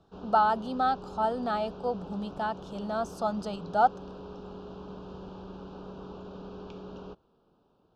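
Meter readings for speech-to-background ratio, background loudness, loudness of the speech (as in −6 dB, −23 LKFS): 14.5 dB, −44.0 LKFS, −29.5 LKFS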